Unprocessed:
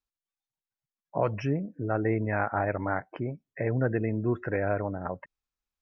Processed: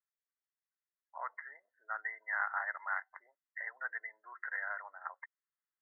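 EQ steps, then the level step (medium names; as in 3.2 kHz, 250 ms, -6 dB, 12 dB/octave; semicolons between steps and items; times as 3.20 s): high-pass 950 Hz 24 dB/octave; brick-wall FIR low-pass 2.1 kHz; differentiator; +12.5 dB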